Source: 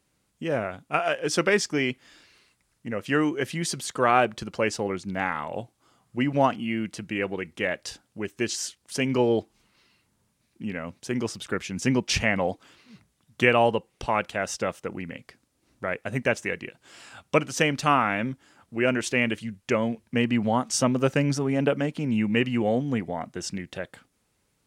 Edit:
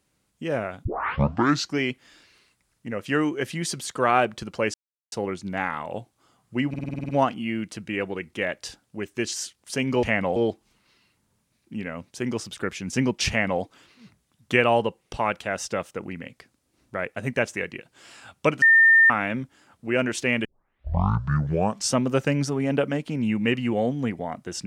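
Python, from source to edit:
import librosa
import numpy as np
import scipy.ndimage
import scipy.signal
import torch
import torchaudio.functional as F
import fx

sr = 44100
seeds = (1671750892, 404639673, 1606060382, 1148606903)

y = fx.edit(x, sr, fx.tape_start(start_s=0.85, length_s=0.93),
    fx.insert_silence(at_s=4.74, length_s=0.38),
    fx.stutter(start_s=6.31, slice_s=0.05, count=9),
    fx.duplicate(start_s=12.18, length_s=0.33, to_s=9.25),
    fx.bleep(start_s=17.51, length_s=0.48, hz=1810.0, db=-11.5),
    fx.tape_start(start_s=19.34, length_s=1.47), tone=tone)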